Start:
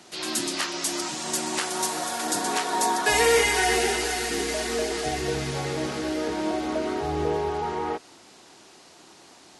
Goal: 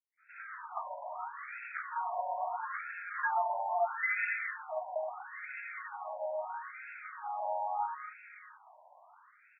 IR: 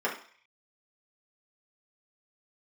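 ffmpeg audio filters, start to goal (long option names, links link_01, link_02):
-filter_complex "[0:a]adynamicequalizer=threshold=0.0178:dfrequency=1200:dqfactor=0.82:tfrequency=1200:tqfactor=0.82:attack=5:release=100:ratio=0.375:range=1.5:mode=cutabove:tftype=bell,acrossover=split=1800|5600[link_01][link_02][link_03];[link_01]adelay=170[link_04];[link_02]adelay=600[link_05];[link_04][link_05][link_03]amix=inputs=3:normalize=0,asettb=1/sr,asplit=3[link_06][link_07][link_08];[link_06]atrim=end=2.584[link_09];[link_07]atrim=start=2.58:end=4.69,asetpts=PTS-STARTPTS,afade=type=in:duration=0.004:curve=qsin,afade=type=out:start_time=2.106:duration=0.004:curve=qsin,afreqshift=-40[link_10];[link_08]atrim=start=4.686[link_11];[link_09][link_10]acrossfade=duration=0.004:curve1=hsin:curve2=qsin[link_12];[link_12][link_11]acrossfade=duration=0.004:curve1=qsin:curve2=hsin,afftfilt=real='re*between(b*sr/1024,740*pow(1900/740,0.5+0.5*sin(2*PI*0.76*pts/sr))/1.41,740*pow(1900/740,0.5+0.5*sin(2*PI*0.76*pts/sr))*1.41)':imag='im*between(b*sr/1024,740*pow(1900/740,0.5+0.5*sin(2*PI*0.76*pts/sr))/1.41,740*pow(1900/740,0.5+0.5*sin(2*PI*0.76*pts/sr))*1.41)':win_size=1024:overlap=0.75"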